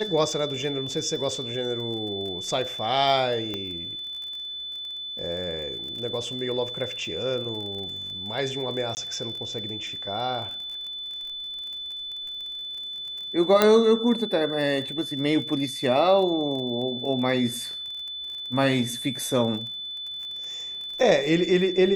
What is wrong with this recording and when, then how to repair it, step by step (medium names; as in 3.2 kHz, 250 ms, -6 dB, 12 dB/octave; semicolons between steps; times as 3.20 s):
crackle 31 per s -34 dBFS
whine 3.5 kHz -32 dBFS
3.54 s: pop -18 dBFS
8.95–8.97 s: dropout 19 ms
13.62 s: pop -4 dBFS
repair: de-click; band-stop 3.5 kHz, Q 30; interpolate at 8.95 s, 19 ms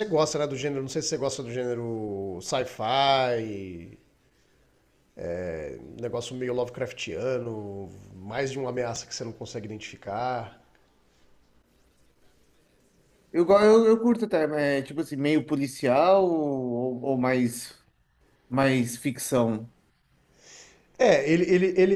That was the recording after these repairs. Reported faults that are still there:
nothing left